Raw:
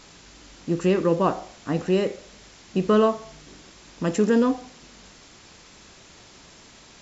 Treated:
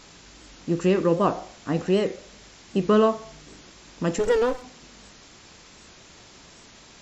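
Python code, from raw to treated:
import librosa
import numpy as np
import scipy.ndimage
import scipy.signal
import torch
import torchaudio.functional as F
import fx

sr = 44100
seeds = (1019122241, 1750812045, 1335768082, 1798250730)

y = fx.lower_of_two(x, sr, delay_ms=2.2, at=(4.18, 4.62), fade=0.02)
y = fx.record_warp(y, sr, rpm=78.0, depth_cents=100.0)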